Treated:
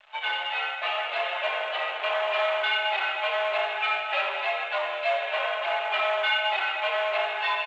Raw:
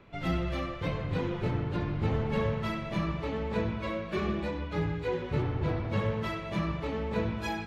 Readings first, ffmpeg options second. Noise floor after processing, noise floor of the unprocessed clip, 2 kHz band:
-33 dBFS, -39 dBFS, +14.5 dB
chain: -filter_complex "[0:a]equalizer=f=2.6k:w=1.9:g=7.5,aecho=1:1:4.6:0.97,adynamicequalizer=threshold=0.00282:dfrequency=910:dqfactor=5.5:tfrequency=910:tqfactor=5.5:attack=5:release=100:ratio=0.375:range=3:mode=cutabove:tftype=bell,asplit=2[a][b];[b]alimiter=limit=-24dB:level=0:latency=1:release=111,volume=-1.5dB[c];[a][c]amix=inputs=2:normalize=0,aecho=1:1:368|736|1104|1472|1840:0.237|0.109|0.0502|0.0231|0.0106,aeval=exprs='0.299*(cos(1*acos(clip(val(0)/0.299,-1,1)))-cos(1*PI/2))+0.0211*(cos(5*acos(clip(val(0)/0.299,-1,1)))-cos(5*PI/2))+0.0376*(cos(7*acos(clip(val(0)/0.299,-1,1)))-cos(7*PI/2))':c=same,dynaudnorm=f=570:g=3:m=6.5dB,asoftclip=type=hard:threshold=-19.5dB,acrusher=bits=7:mix=0:aa=0.5,highpass=f=460:t=q:w=0.5412,highpass=f=460:t=q:w=1.307,lowpass=f=3.4k:t=q:w=0.5176,lowpass=f=3.4k:t=q:w=0.7071,lowpass=f=3.4k:t=q:w=1.932,afreqshift=190,volume=1.5dB" -ar 16000 -c:a pcm_mulaw

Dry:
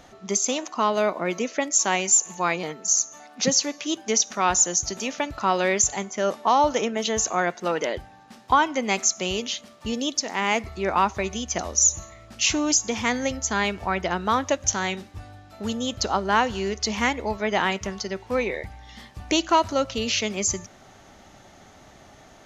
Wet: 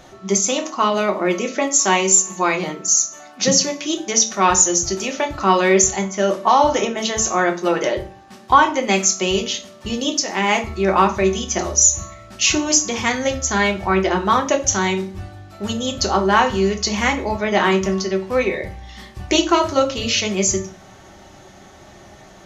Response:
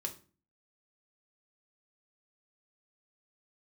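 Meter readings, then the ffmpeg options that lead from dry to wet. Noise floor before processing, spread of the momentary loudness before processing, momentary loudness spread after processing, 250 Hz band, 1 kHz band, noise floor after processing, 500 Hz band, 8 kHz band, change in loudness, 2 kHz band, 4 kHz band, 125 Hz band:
-50 dBFS, 10 LU, 10 LU, +7.0 dB, +5.5 dB, -44 dBFS, +7.0 dB, +5.5 dB, +5.5 dB, +5.5 dB, +5.5 dB, +8.5 dB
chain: -filter_complex "[1:a]atrim=start_sample=2205[a];[0:a][a]afir=irnorm=-1:irlink=0,volume=6dB"

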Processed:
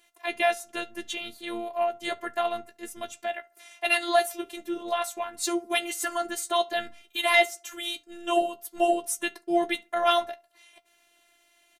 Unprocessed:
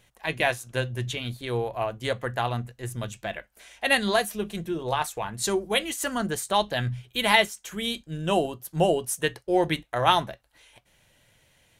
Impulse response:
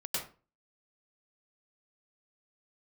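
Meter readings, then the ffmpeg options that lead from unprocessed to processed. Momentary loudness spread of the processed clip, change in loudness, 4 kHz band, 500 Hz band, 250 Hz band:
13 LU, -1.0 dB, -2.0 dB, -1.0 dB, -3.0 dB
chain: -filter_complex "[0:a]highpass=230,afftfilt=real='hypot(re,im)*cos(PI*b)':imag='0':win_size=512:overlap=0.75,acontrast=60,asplit=2[a][b];[b]adelay=13,volume=-10.5dB[c];[a][c]amix=inputs=2:normalize=0,asplit=2[d][e];[e]adelay=71,lowpass=f=1.4k:p=1,volume=-23dB,asplit=2[f][g];[g]adelay=71,lowpass=f=1.4k:p=1,volume=0.38,asplit=2[h][i];[i]adelay=71,lowpass=f=1.4k:p=1,volume=0.38[j];[f][h][j]amix=inputs=3:normalize=0[k];[d][k]amix=inputs=2:normalize=0,volume=-4dB"

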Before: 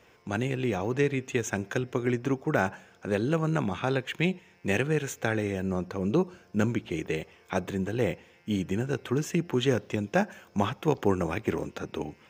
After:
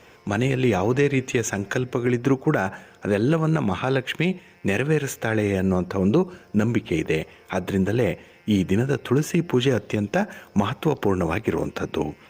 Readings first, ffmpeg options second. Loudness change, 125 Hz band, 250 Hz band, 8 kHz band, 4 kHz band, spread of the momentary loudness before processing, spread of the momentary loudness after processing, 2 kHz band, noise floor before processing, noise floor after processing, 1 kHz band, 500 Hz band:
+6.0 dB, +6.5 dB, +6.5 dB, +6.0 dB, +5.5 dB, 6 LU, 5 LU, +5.0 dB, -59 dBFS, -52 dBFS, +4.5 dB, +5.5 dB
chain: -af "acontrast=77,alimiter=limit=-12dB:level=0:latency=1:release=153,volume=2dB" -ar 48000 -c:a libopus -b:a 48k

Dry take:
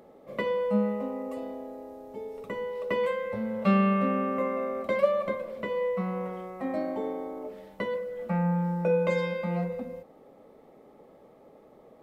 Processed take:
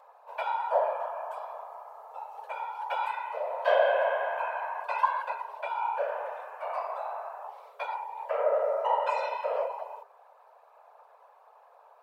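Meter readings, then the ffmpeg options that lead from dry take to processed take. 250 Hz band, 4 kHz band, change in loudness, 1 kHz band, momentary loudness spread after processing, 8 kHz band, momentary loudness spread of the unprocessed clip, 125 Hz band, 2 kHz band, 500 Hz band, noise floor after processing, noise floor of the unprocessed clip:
under -40 dB, +0.5 dB, -1.5 dB, +5.5 dB, 16 LU, n/a, 15 LU, under -40 dB, +1.5 dB, -1.5 dB, -58 dBFS, -55 dBFS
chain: -af "lowshelf=f=240:g=7,afftfilt=real='hypot(re,im)*cos(2*PI*random(0))':imag='hypot(re,im)*sin(2*PI*random(1))':win_size=512:overlap=0.75,afreqshift=410,volume=1.5dB"

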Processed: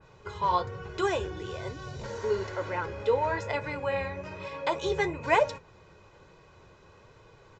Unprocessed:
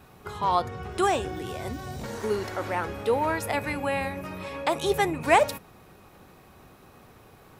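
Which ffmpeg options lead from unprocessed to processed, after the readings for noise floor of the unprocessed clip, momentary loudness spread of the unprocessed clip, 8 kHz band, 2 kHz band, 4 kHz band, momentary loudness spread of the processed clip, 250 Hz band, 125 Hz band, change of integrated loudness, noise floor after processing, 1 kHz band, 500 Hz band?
-54 dBFS, 14 LU, -9.5 dB, -3.0 dB, -4.5 dB, 13 LU, -6.5 dB, -2.0 dB, -3.0 dB, -57 dBFS, -4.0 dB, -2.0 dB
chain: -af "aecho=1:1:2:0.59,flanger=delay=6.1:depth=5.8:regen=-47:speed=1.1:shape=sinusoidal,aresample=16000,aresample=44100,adynamicequalizer=threshold=0.00794:dfrequency=2200:dqfactor=0.7:tfrequency=2200:tqfactor=0.7:attack=5:release=100:ratio=0.375:range=2:mode=cutabove:tftype=highshelf"

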